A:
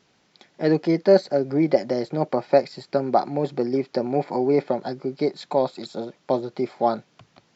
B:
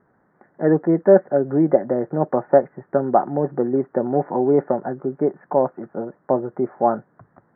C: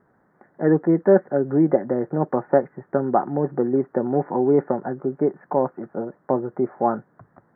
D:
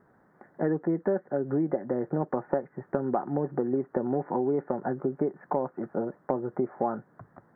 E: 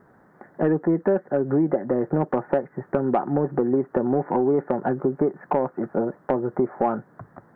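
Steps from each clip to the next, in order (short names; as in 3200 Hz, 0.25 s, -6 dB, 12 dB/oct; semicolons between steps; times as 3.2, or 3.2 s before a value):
steep low-pass 1800 Hz 72 dB/oct; gain +3 dB
dynamic EQ 630 Hz, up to -6 dB, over -30 dBFS, Q 2.9
compressor 6:1, threshold -24 dBFS, peak gain reduction 14 dB
soft clip -16 dBFS, distortion -21 dB; gain +7 dB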